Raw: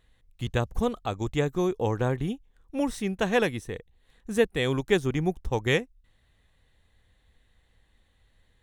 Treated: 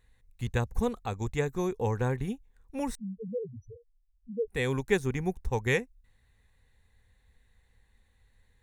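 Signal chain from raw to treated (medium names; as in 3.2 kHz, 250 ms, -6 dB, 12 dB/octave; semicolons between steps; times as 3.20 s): graphic EQ with 31 bands 160 Hz -6 dB, 315 Hz -11 dB, 630 Hz -10 dB, 1.25 kHz -6 dB, 3.15 kHz -11 dB, 5 kHz -4 dB; 2.95–4.48 s: loudest bins only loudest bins 1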